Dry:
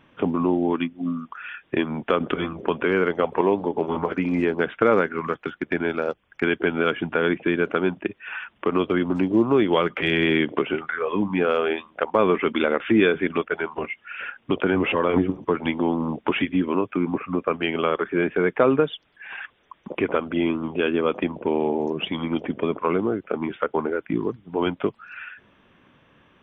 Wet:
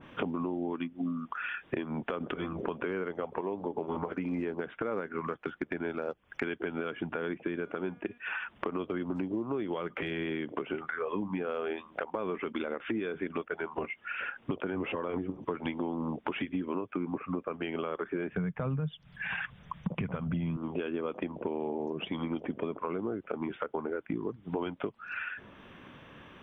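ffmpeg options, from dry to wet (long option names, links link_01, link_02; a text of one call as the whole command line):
ffmpeg -i in.wav -filter_complex "[0:a]asettb=1/sr,asplit=3[link_01][link_02][link_03];[link_01]atrim=end=7.524[link_04];[link_02]atrim=start=7.52:end=8.18,asetpts=PTS-STARTPTS,afade=type=in:duration=0.004:curve=qsin,afade=type=out:start_time=0.656:duration=0.004:curve=qsin,bandreject=frequency=239.9:width_type=h:width=4,bandreject=frequency=479.8:width_type=h:width=4,bandreject=frequency=719.7:width_type=h:width=4,bandreject=frequency=959.6:width_type=h:width=4,bandreject=frequency=1199.5:width_type=h:width=4,bandreject=frequency=1439.4:width_type=h:width=4,bandreject=frequency=1679.3:width_type=h:width=4,bandreject=frequency=1919.2:width_type=h:width=4,bandreject=frequency=2159.1:width_type=h:width=4,bandreject=frequency=2399:width_type=h:width=4,bandreject=frequency=2638.9:width_type=h:width=4,bandreject=frequency=2878.8:width_type=h:width=4,bandreject=frequency=3118.7:width_type=h:width=4,bandreject=frequency=3358.6:width_type=h:width=4,bandreject=frequency=3598.5:width_type=h:width=4,bandreject=frequency=3838.4:width_type=h:width=4,bandreject=frequency=4078.3:width_type=h:width=4,bandreject=frequency=4318.2:width_type=h:width=4,bandreject=frequency=4558.1:width_type=h:width=4,bandreject=frequency=4798:width_type=h:width=4,bandreject=frequency=5037.9:width_type=h:width=4,bandreject=frequency=5277.8:width_type=h:width=4,bandreject=frequency=5517.7:width_type=h:width=4,bandreject=frequency=5757.6:width_type=h:width=4,bandreject=frequency=5997.5:width_type=h:width=4,bandreject=frequency=6237.4:width_type=h:width=4,bandreject=frequency=6477.3:width_type=h:width=4,bandreject=frequency=6717.2:width_type=h:width=4,bandreject=frequency=6957.1:width_type=h:width=4,bandreject=frequency=7197:width_type=h:width=4,bandreject=frequency=7436.9:width_type=h:width=4,bandreject=frequency=7676.8:width_type=h:width=4,bandreject=frequency=7916.7:width_type=h:width=4,bandreject=frequency=8156.6:width_type=h:width=4,bandreject=frequency=8396.5:width_type=h:width=4,bandreject=frequency=8636.4:width_type=h:width=4,bandreject=frequency=8876.3:width_type=h:width=4,bandreject=frequency=9116.2:width_type=h:width=4[link_05];[link_03]atrim=start=8.176[link_06];[link_04][link_05]acrossfade=duration=0.004:curve1=hsin:curve2=qsin[link_07];[link_07][link_06]acrossfade=duration=0.004:curve1=qsin:curve2=hsin,asettb=1/sr,asplit=3[link_08][link_09][link_10];[link_08]atrim=end=18.324[link_11];[link_09]atrim=start=18.32:end=20.57,asetpts=PTS-STARTPTS,afade=type=in:duration=0.004:curve=qsin,afade=type=out:start_time=2.246:duration=0.004:curve=qsin,lowshelf=frequency=230:width_type=q:width=3:gain=12.5[link_12];[link_10]atrim=start=20.566[link_13];[link_11][link_12]acrossfade=duration=0.004:curve1=hsin:curve2=qsin[link_14];[link_14][link_13]acrossfade=duration=0.004:curve1=qsin:curve2=hsin,alimiter=limit=-13.5dB:level=0:latency=1:release=235,acompressor=threshold=-37dB:ratio=6,adynamicequalizer=threshold=0.00158:dfrequency=1800:dqfactor=0.7:tfrequency=1800:tqfactor=0.7:attack=5:release=100:ratio=0.375:range=2.5:mode=cutabove:tftype=highshelf,volume=5.5dB" out.wav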